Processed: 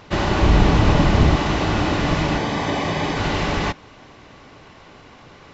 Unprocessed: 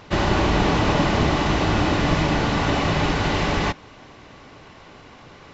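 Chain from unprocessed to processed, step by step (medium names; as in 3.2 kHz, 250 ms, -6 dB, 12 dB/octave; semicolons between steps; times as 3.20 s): 0.42–1.36 s: bass shelf 140 Hz +11 dB; 2.38–3.17 s: comb of notches 1.4 kHz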